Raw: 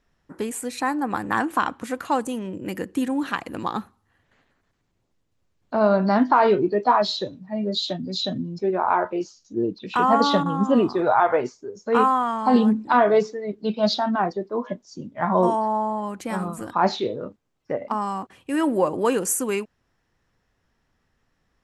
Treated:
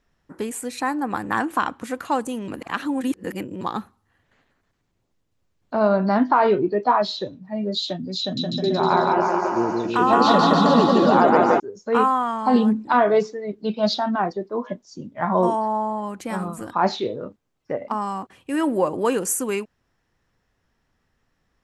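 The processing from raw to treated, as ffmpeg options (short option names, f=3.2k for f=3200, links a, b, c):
-filter_complex "[0:a]asettb=1/sr,asplit=3[a][b][c];[a]atrim=end=5.884[d];[b]atrim=start=5.88:end=7.45,asetpts=PTS-STARTPTS,afade=t=in:d=0.004:c=qsin,afade=t=out:st=1.566:d=0.004:c=qsin,highshelf=f=5.5k:g=-7[e];[c]atrim=start=7.446[f];[d][e]acrossfade=d=0.004:c1=hsin:c2=qsin[g];[g][f]acrossfade=d=0.004:c1=qsin:c2=hsin,asettb=1/sr,asplit=3[h][i][j];[h]atrim=end=8.204[k];[i]atrim=start=8.2:end=11.6,asetpts=PTS-STARTPTS,afade=t=in:d=0.004:c=qsin,afade=t=out:st=3.396:d=0.004:c=qsin,aecho=1:1:170|314.5|437.3|541.7|630.5|705.9|770|824.5|870.8:0.794|0.631|0.501|0.398|0.316|0.251|0.2|0.158|0.126,atrim=end_sample=149940[l];[j]atrim=start=11.596[m];[k][l]acrossfade=d=0.004:c1=hsin:c2=qsin[n];[n][m]acrossfade=d=0.004:c1=qsin:c2=hsin,asplit=3[o][p][q];[o]atrim=end=2.482[r];[p]atrim=start=2.478:end=3.612,asetpts=PTS-STARTPTS,areverse[s];[q]atrim=start=3.608[t];[r][s]acrossfade=d=0.004:c1=hsin:c2=hsin[u];[u][t]acrossfade=d=0.004:c1=hsin:c2=hsin"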